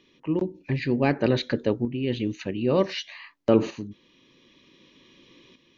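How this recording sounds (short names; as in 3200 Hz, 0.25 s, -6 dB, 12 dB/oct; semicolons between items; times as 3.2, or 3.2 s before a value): tremolo saw up 0.54 Hz, depth 60%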